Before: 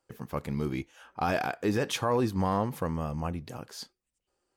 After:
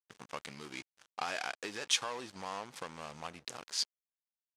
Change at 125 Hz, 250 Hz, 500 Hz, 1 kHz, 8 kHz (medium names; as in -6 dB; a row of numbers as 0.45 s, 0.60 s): -24.0 dB, -19.5 dB, -14.0 dB, -9.5 dB, +4.5 dB